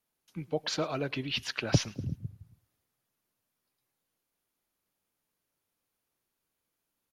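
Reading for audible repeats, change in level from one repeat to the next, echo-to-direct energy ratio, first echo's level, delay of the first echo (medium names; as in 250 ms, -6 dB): 2, -6.5 dB, -22.0 dB, -23.0 dB, 108 ms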